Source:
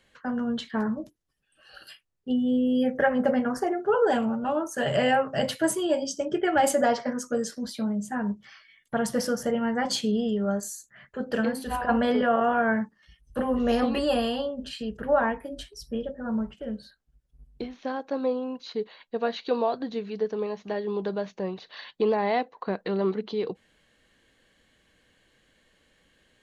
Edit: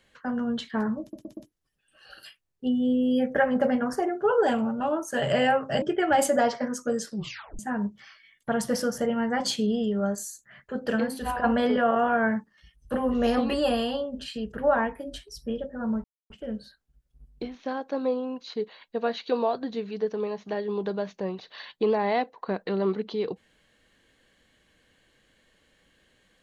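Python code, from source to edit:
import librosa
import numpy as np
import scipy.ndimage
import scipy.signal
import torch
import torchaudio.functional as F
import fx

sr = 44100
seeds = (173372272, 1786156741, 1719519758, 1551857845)

y = fx.edit(x, sr, fx.stutter(start_s=1.01, slice_s=0.12, count=4),
    fx.cut(start_s=5.46, length_s=0.81),
    fx.tape_stop(start_s=7.54, length_s=0.5),
    fx.insert_silence(at_s=16.49, length_s=0.26), tone=tone)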